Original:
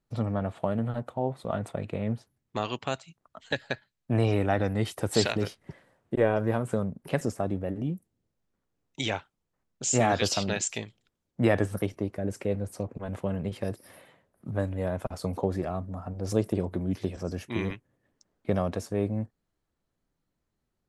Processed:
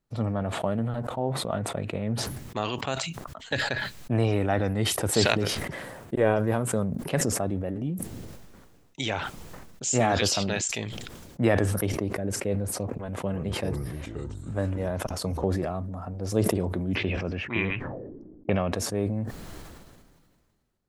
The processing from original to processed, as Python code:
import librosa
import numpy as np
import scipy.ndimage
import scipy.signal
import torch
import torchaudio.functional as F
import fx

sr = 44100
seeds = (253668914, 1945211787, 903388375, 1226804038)

y = fx.high_shelf(x, sr, hz=8500.0, db=8.0, at=(5.58, 6.98))
y = fx.echo_pitch(y, sr, ms=321, semitones=-5, count=2, db_per_echo=-6.0, at=(13.0, 15.44))
y = fx.envelope_lowpass(y, sr, base_hz=290.0, top_hz=2600.0, q=4.0, full_db=-30.5, direction='up', at=(16.94, 18.71), fade=0.02)
y = fx.sustainer(y, sr, db_per_s=32.0)